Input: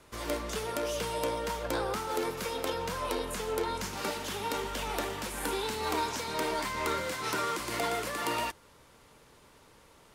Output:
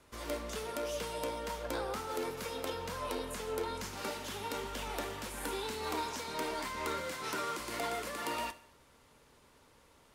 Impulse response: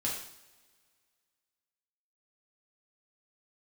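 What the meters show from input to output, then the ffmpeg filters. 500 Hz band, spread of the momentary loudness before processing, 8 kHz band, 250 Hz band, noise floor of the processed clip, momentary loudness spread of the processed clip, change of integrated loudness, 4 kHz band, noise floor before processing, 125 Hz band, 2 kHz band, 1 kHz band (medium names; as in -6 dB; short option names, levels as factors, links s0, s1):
-5.0 dB, 3 LU, -5.0 dB, -5.0 dB, -64 dBFS, 3 LU, -5.0 dB, -5.0 dB, -59 dBFS, -5.5 dB, -5.0 dB, -5.5 dB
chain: -filter_complex "[0:a]asplit=2[s0][s1];[1:a]atrim=start_sample=2205[s2];[s1][s2]afir=irnorm=-1:irlink=0,volume=0.188[s3];[s0][s3]amix=inputs=2:normalize=0,volume=0.473"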